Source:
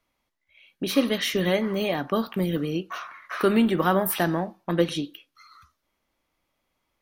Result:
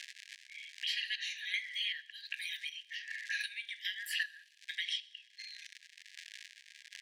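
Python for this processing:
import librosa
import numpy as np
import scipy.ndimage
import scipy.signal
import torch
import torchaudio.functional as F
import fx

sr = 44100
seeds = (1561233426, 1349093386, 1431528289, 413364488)

y = fx.spec_ripple(x, sr, per_octave=1.5, drift_hz=-0.96, depth_db=11)
y = fx.high_shelf(y, sr, hz=7100.0, db=7.5, at=(1.3, 3.54))
y = fx.dmg_crackle(y, sr, seeds[0], per_s=170.0, level_db=-36.0)
y = fx.chopper(y, sr, hz=1.3, depth_pct=65, duty_pct=50)
y = fx.brickwall_highpass(y, sr, low_hz=1600.0)
y = fx.air_absorb(y, sr, metres=100.0)
y = fx.echo_wet_highpass(y, sr, ms=65, feedback_pct=60, hz=3000.0, wet_db=-21.0)
y = fx.band_squash(y, sr, depth_pct=70)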